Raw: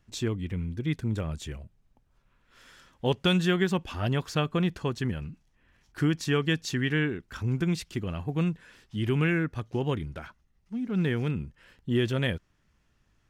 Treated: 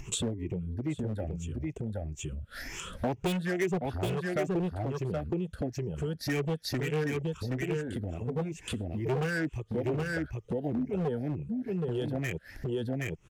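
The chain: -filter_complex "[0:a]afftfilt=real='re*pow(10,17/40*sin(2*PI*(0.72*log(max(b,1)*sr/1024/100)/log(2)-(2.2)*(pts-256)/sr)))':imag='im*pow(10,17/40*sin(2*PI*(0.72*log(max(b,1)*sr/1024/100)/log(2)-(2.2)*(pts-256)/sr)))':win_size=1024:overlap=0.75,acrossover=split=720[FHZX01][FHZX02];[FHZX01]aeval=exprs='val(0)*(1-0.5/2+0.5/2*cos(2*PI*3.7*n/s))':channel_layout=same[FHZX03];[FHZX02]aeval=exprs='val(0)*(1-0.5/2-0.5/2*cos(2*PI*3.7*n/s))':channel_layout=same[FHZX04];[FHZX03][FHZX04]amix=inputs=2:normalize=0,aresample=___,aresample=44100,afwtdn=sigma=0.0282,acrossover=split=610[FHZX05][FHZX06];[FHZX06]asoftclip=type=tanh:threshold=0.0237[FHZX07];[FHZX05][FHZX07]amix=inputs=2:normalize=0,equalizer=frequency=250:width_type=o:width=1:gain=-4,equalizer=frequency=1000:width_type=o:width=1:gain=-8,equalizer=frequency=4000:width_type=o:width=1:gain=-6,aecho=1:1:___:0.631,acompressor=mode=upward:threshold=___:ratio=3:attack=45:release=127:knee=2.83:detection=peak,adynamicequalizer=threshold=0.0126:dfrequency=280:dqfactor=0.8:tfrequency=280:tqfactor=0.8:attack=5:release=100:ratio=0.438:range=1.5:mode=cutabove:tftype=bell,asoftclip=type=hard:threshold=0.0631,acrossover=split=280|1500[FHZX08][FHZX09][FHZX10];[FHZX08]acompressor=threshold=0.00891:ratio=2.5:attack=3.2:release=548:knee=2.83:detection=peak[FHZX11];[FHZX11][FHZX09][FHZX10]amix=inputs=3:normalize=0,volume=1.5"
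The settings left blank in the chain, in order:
32000, 772, 0.0398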